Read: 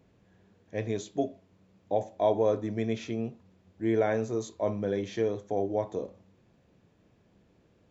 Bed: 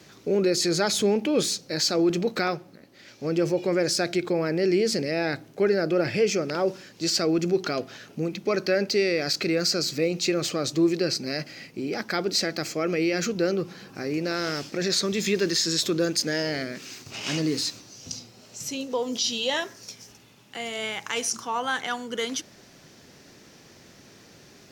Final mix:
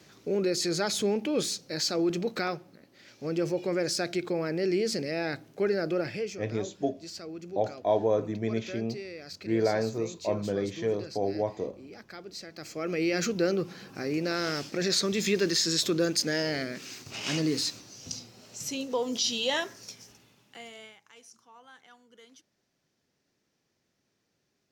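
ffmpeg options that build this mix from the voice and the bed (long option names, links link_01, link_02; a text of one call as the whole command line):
ffmpeg -i stem1.wav -i stem2.wav -filter_complex "[0:a]adelay=5650,volume=0dB[link_01];[1:a]volume=10.5dB,afade=type=out:start_time=5.92:duration=0.47:silence=0.237137,afade=type=in:start_time=12.51:duration=0.65:silence=0.16788,afade=type=out:start_time=19.72:duration=1.27:silence=0.0630957[link_02];[link_01][link_02]amix=inputs=2:normalize=0" out.wav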